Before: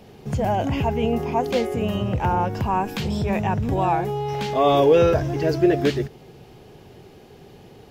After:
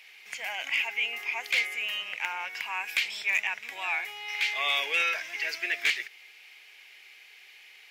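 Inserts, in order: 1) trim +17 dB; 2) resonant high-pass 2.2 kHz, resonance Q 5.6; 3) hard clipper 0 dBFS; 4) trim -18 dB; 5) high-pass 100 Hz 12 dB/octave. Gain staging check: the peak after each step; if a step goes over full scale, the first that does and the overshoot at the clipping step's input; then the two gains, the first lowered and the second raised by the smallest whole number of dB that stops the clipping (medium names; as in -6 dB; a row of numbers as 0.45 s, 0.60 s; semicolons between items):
+10.5 dBFS, +8.5 dBFS, 0.0 dBFS, -18.0 dBFS, -17.5 dBFS; step 1, 8.5 dB; step 1 +8 dB, step 4 -9 dB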